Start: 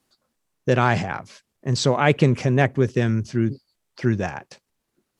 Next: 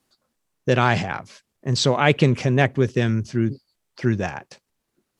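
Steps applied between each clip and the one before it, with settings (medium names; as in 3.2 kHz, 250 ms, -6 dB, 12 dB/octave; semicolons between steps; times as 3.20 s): dynamic bell 3.4 kHz, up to +5 dB, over -39 dBFS, Q 1.2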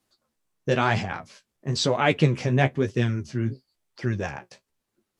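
flange 1 Hz, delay 8.6 ms, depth 8.7 ms, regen +31%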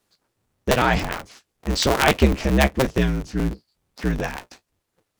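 cycle switcher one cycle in 2, inverted; trim +3.5 dB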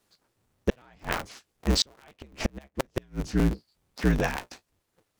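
inverted gate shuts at -10 dBFS, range -37 dB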